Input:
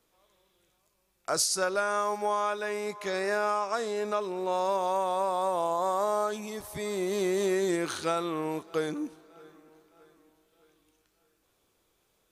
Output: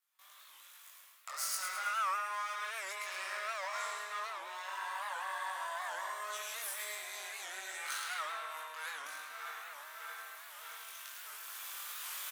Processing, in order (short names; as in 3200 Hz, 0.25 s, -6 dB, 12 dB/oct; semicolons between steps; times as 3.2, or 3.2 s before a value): half-wave gain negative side -12 dB; recorder AGC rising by 5.9 dB/s; gate with hold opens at -59 dBFS; high shelf 9200 Hz +11 dB; reverse; compressor 10:1, threshold -44 dBFS, peak gain reduction 23 dB; reverse; ladder high-pass 1000 Hz, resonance 25%; doubler 21 ms -2.5 dB; on a send: feedback echo 0.107 s, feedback 52%, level -5.5 dB; on the sum: spring tank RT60 1.2 s, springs 43/48 ms, chirp 40 ms, DRR -1 dB; record warp 78 rpm, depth 160 cents; gain +13.5 dB